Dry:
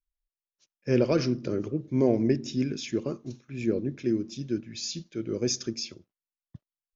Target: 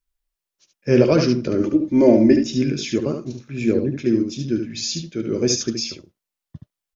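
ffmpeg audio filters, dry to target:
-filter_complex "[0:a]asettb=1/sr,asplit=3[a][b][c];[a]atrim=end=1.604[d];[b]atrim=start=1.6:end=2.43,asetpts=PTS-STARTPTS,afade=t=in:d=0.004:c=qsin,afade=t=out:st=0.826:d=0.004:c=qsin,aecho=1:1:3.4:0.82,atrim=end_sample=36603[e];[c]atrim=start=2.426[f];[d][e]acrossfade=d=0.004:c1=hsin:c2=qsin[g];[g][f]acrossfade=d=0.004:c1=qsin:c2=hsin,asplit=2[h][i];[i]aecho=0:1:13|73:0.282|0.501[j];[h][j]amix=inputs=2:normalize=0,volume=7.5dB"

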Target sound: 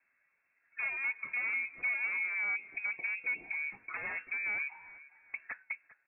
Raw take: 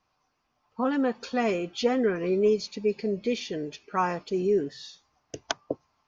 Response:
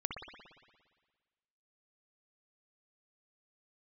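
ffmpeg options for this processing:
-filter_complex "[0:a]asoftclip=type=tanh:threshold=-25dB,asettb=1/sr,asplit=3[a][b][c];[a]atrim=end=3.514[d];[b]atrim=start=3.51:end=5.62,asetpts=PTS-STARTPTS,afade=t=in:d=0.004:c=qsin,afade=t=out:st=2.106:d=0.004:c=qsin,equalizer=f=125:t=o:w=1:g=-7,equalizer=f=500:t=o:w=1:g=-6,equalizer=f=1k:t=o:w=1:g=11[e];[c]atrim=start=5.616[f];[d][e]acrossfade=d=0.004:c1=hsin:c2=qsin[g];[g][f]acrossfade=d=0.004:c1=qsin:c2=hsin,aeval=exprs='0.0376*(abs(mod(val(0)/0.0376+3,4)-2)-1)':c=same,acompressor=threshold=-58dB:ratio=2,equalizer=f=490:w=2.9:g=14.5,agate=range=-11dB:threshold=-59dB:ratio=16:detection=peak,alimiter=level_in=11dB:limit=-24dB:level=0:latency=1:release=193,volume=-11dB,asplit=4[h][i][j][k];[i]adelay=399,afreqshift=33,volume=-18.5dB[l];[j]adelay=798,afreqshift=66,volume=-28.4dB[m];[k]adelay=1197,afreqshift=99,volume=-38.3dB[n];[h][l][m][n]amix=inputs=4:normalize=0,lowpass=f=2.3k:t=q:w=0.5098,lowpass=f=2.3k:t=q:w=0.6013,lowpass=f=2.3k:t=q:w=0.9,lowpass=f=2.3k:t=q:w=2.563,afreqshift=-2700,volume=7.5dB"

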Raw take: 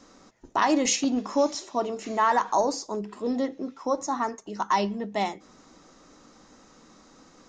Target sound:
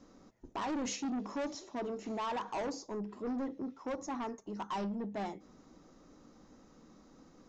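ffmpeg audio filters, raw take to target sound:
-af "tiltshelf=f=660:g=5.5,aresample=16000,asoftclip=type=tanh:threshold=-26dB,aresample=44100,volume=-7dB"

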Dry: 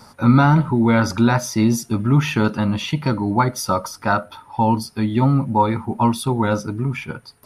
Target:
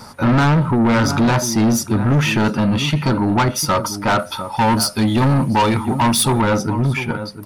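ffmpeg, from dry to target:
-filter_complex "[0:a]asettb=1/sr,asplit=3[a][b][c];[a]atrim=end=4.194[d];[b]atrim=start=4.19:end=6.41,asetpts=PTS-STARTPTS,afade=t=in:d=0.004:c=qsin,afade=t=out:st=2.216:d=0.004:c=qsin,equalizer=f=8.7k:t=o:w=2.9:g=11[e];[c]atrim=start=6.406[f];[d][e]acrossfade=d=0.004:c1=hsin:c2=qsin[g];[g][f]acrossfade=d=0.004:c1=qsin:c2=hsin,asplit=2[h][i];[i]adelay=699.7,volume=-15dB,highshelf=f=4k:g=-15.7[j];[h][j]amix=inputs=2:normalize=0,asoftclip=type=tanh:threshold=-19dB,volume=7.5dB"

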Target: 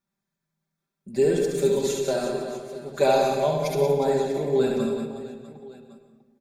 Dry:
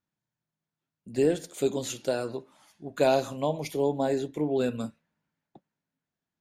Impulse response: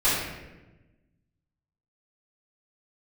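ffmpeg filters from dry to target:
-filter_complex "[0:a]bandreject=f=2.9k:w=6.7,aecho=1:1:5.1:0.82,aecho=1:1:70|182|361.2|647.9|1107:0.631|0.398|0.251|0.158|0.1,asplit=2[a][b];[1:a]atrim=start_sample=2205,adelay=102[c];[b][c]afir=irnorm=-1:irlink=0,volume=-22.5dB[d];[a][d]amix=inputs=2:normalize=0"

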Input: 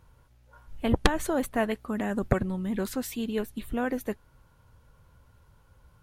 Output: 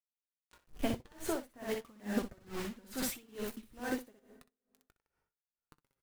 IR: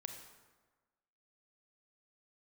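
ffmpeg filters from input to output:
-filter_complex "[0:a]asettb=1/sr,asplit=3[a][b][c];[a]atrim=end=2.404[d];[b]atrim=start=2.4:end=3.19,asetpts=PTS-STARTPTS,afade=t=in:d=0.004:c=qsin,afade=t=out:st=0.786:d=0.004:c=qsin,aeval=exprs='val(0)+0.5*0.0211*sgn(val(0))':c=same[e];[c]atrim=start=3.186[f];[d][e]acrossfade=d=0.004:c1=hsin:c2=qsin[g];[g][f]acrossfade=d=0.004:c1=qsin:c2=hsin,acompressor=threshold=-37dB:ratio=4,acrusher=bits=7:mix=0:aa=0.000001,flanger=delay=2.2:depth=7.5:regen=47:speed=0.4:shape=triangular,aecho=1:1:19|62:0.178|0.631,asplit=2[h][i];[1:a]atrim=start_sample=2205[j];[i][j]afir=irnorm=-1:irlink=0,volume=-6.5dB[k];[h][k]amix=inputs=2:normalize=0,aeval=exprs='val(0)*pow(10,-28*(0.5-0.5*cos(2*PI*2.3*n/s))/20)':c=same,volume=7dB"

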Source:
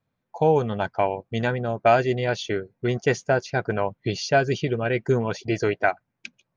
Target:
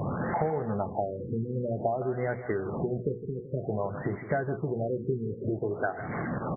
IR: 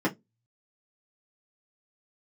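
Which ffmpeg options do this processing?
-af "aeval=exprs='val(0)+0.5*0.0422*sgn(val(0))':c=same,highpass=67,aemphasis=mode=reproduction:type=50fm,bandreject=f=950:w=12,acompressor=threshold=-32dB:ratio=10,bandreject=f=60:t=h:w=6,bandreject=f=120:t=h:w=6,bandreject=f=180:t=h:w=6,bandreject=f=240:t=h:w=6,bandreject=f=300:t=h:w=6,bandreject=f=360:t=h:w=6,bandreject=f=420:t=h:w=6,bandreject=f=480:t=h:w=6,aecho=1:1:161|322|483|644:0.237|0.0972|0.0399|0.0163,afftfilt=real='re*lt(b*sr/1024,470*pow(2300/470,0.5+0.5*sin(2*PI*0.53*pts/sr)))':imag='im*lt(b*sr/1024,470*pow(2300/470,0.5+0.5*sin(2*PI*0.53*pts/sr)))':win_size=1024:overlap=0.75,volume=6dB"

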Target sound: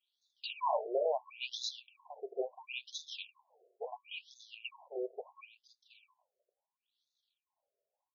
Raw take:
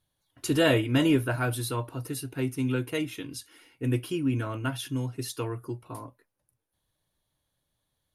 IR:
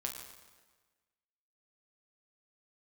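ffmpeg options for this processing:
-af "aeval=exprs='if(lt(val(0),0),0.251*val(0),val(0))':c=same,afftfilt=real='re*(1-between(b*sr/4096,1100,2300))':imag='im*(1-between(b*sr/4096,1100,2300))':win_size=4096:overlap=0.75,afftfilt=real='re*between(b*sr/1024,490*pow(4900/490,0.5+0.5*sin(2*PI*0.73*pts/sr))/1.41,490*pow(4900/490,0.5+0.5*sin(2*PI*0.73*pts/sr))*1.41)':imag='im*between(b*sr/1024,490*pow(4900/490,0.5+0.5*sin(2*PI*0.73*pts/sr))/1.41,490*pow(4900/490,0.5+0.5*sin(2*PI*0.73*pts/sr))*1.41)':win_size=1024:overlap=0.75,volume=5.5dB"

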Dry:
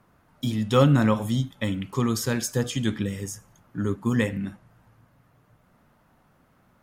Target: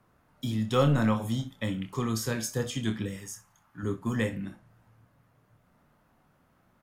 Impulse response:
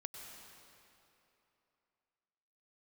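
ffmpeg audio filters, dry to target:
-filter_complex "[0:a]asettb=1/sr,asplit=3[a][b][c];[a]atrim=end=3.164[d];[b]atrim=start=3.16:end=3.83,asetpts=PTS-STARTPTS,afade=t=in:d=0.004:c=qsin,afade=t=out:st=0.666:d=0.004:c=qsin,lowshelf=f=680:t=q:w=1.5:g=-8[e];[c]atrim=start=3.826[f];[d][e]acrossfade=d=0.004:c1=hsin:c2=qsin[g];[g][f]acrossfade=d=0.004:c1=qsin:c2=hsin,acrossover=split=410|1100[h][i][j];[h]aeval=exprs='clip(val(0),-1,0.119)':c=same[k];[k][i][j]amix=inputs=3:normalize=0,aecho=1:1:27|63:0.398|0.15,volume=-5dB"

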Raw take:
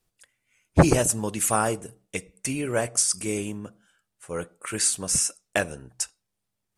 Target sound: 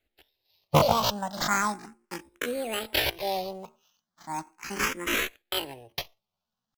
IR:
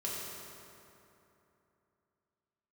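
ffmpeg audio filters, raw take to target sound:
-filter_complex "[0:a]acrusher=samples=9:mix=1:aa=0.000001,asetrate=80880,aresample=44100,atempo=0.545254,asplit=2[a][b];[b]afreqshift=0.37[c];[a][c]amix=inputs=2:normalize=1"

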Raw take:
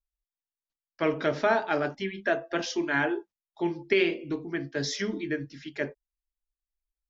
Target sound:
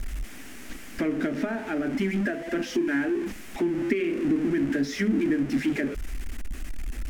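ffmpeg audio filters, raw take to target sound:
-af "aeval=exprs='val(0)+0.5*0.0447*sgn(val(0))':c=same,aemphasis=mode=reproduction:type=75fm,acompressor=threshold=-29dB:ratio=4,equalizer=f=125:t=o:w=1:g=-11,equalizer=f=250:t=o:w=1:g=11,equalizer=f=500:t=o:w=1:g=-7,equalizer=f=1k:t=o:w=1:g=-12,equalizer=f=2k:t=o:w=1:g=3,equalizer=f=4k:t=o:w=1:g=-10,volume=5.5dB"

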